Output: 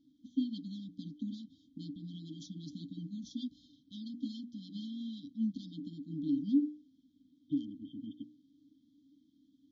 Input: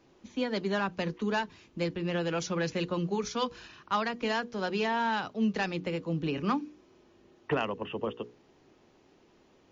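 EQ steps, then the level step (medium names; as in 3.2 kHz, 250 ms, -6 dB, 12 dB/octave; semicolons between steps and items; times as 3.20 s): vowel filter u; brick-wall FIR band-stop 300–3100 Hz; peaking EQ 190 Hz -6.5 dB 0.95 oct; +13.5 dB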